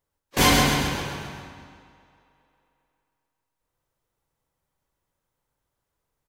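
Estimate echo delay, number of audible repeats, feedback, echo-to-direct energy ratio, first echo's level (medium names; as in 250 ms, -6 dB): 133 ms, 6, 52%, -3.0 dB, -4.5 dB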